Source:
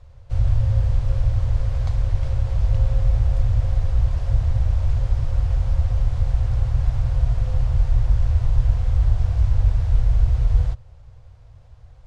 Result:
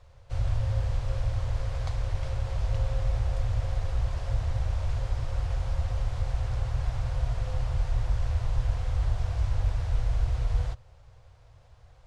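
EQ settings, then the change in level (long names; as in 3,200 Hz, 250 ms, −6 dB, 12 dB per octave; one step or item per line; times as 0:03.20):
low-shelf EQ 280 Hz −9.5 dB
0.0 dB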